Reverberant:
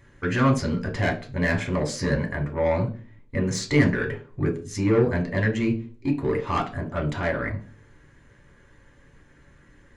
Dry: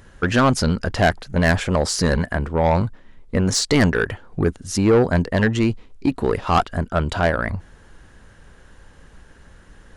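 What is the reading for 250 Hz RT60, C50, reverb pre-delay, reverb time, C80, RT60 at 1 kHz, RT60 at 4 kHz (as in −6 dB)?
0.55 s, 12.5 dB, 3 ms, 0.40 s, 18.0 dB, 0.35 s, 0.35 s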